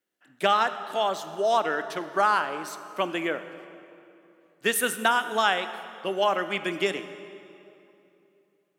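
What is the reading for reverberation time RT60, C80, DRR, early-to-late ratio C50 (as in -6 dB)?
2.9 s, 12.5 dB, 11.0 dB, 11.5 dB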